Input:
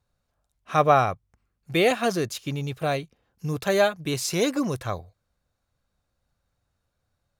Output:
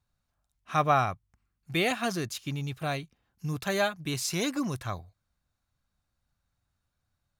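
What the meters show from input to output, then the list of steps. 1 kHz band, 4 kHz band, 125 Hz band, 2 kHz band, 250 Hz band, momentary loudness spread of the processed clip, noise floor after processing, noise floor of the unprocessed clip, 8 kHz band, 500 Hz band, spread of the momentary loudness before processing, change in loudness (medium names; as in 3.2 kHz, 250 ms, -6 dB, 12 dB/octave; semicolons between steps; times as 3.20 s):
-5.0 dB, -3.0 dB, -3.5 dB, -3.5 dB, -4.5 dB, 11 LU, -82 dBFS, -78 dBFS, -3.0 dB, -9.0 dB, 12 LU, -5.5 dB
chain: peaking EQ 490 Hz -9 dB 0.78 oct; trim -3 dB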